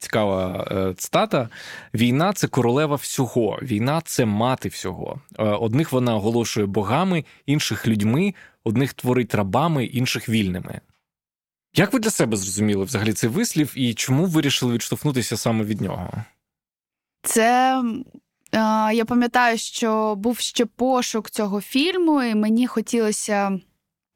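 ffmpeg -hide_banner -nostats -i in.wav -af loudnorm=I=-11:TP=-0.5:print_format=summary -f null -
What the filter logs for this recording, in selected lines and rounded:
Input Integrated:    -21.5 LUFS
Input True Peak:      -6.2 dBTP
Input LRA:             1.9 LU
Input Threshold:     -31.8 LUFS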